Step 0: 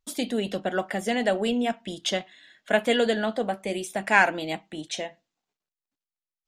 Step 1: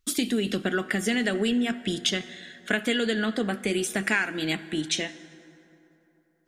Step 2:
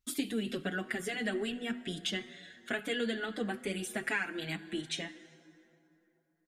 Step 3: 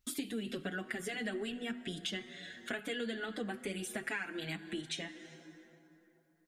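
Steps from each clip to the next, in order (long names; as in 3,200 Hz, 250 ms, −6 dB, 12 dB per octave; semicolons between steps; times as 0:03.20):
flat-topped bell 710 Hz −12 dB 1.2 octaves; downward compressor 6 to 1, threshold −30 dBFS, peak gain reduction 14.5 dB; on a send at −16 dB: convolution reverb RT60 3.4 s, pre-delay 66 ms; on the sum: level +8 dB
dynamic equaliser 5,900 Hz, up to −6 dB, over −48 dBFS, Q 1.9; barber-pole flanger 6 ms +2.3 Hz; level −5 dB
downward compressor 2 to 1, threshold −48 dBFS, peak gain reduction 11.5 dB; level +5 dB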